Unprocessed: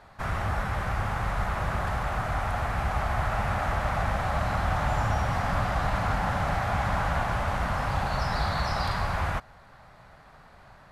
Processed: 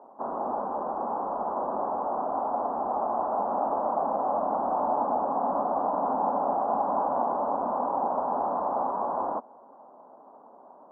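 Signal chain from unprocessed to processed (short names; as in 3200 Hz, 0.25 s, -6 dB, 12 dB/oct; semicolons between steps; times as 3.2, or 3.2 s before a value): elliptic band-pass 250–990 Hz, stop band 40 dB; air absorption 480 m; gain +7.5 dB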